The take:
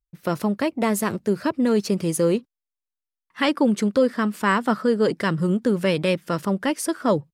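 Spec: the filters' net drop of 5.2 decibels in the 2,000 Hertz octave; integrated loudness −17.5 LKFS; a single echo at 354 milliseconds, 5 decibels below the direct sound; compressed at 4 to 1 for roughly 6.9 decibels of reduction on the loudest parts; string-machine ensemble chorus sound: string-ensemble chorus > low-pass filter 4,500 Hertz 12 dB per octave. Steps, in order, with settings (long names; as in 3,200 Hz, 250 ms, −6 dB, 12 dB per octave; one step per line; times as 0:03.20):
parametric band 2,000 Hz −6.5 dB
downward compressor 4 to 1, threshold −23 dBFS
single-tap delay 354 ms −5 dB
string-ensemble chorus
low-pass filter 4,500 Hz 12 dB per octave
level +12 dB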